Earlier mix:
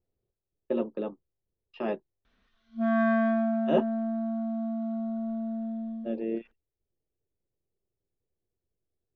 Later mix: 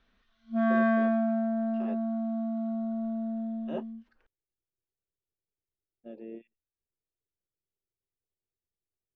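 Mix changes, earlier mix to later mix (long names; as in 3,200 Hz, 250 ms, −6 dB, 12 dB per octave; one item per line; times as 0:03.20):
speech −11.5 dB
background: entry −2.25 s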